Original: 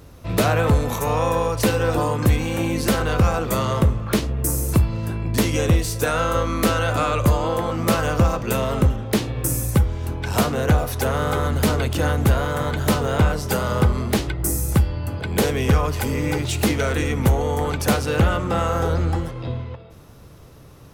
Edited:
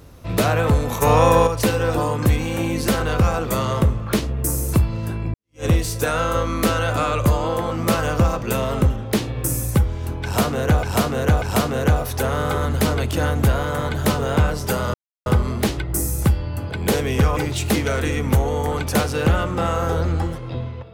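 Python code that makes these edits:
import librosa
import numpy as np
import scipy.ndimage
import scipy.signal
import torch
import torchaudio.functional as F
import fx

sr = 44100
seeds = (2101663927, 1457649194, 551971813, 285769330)

y = fx.edit(x, sr, fx.clip_gain(start_s=1.02, length_s=0.45, db=6.5),
    fx.fade_in_span(start_s=5.34, length_s=0.31, curve='exp'),
    fx.repeat(start_s=10.24, length_s=0.59, count=3),
    fx.insert_silence(at_s=13.76, length_s=0.32),
    fx.cut(start_s=15.87, length_s=0.43), tone=tone)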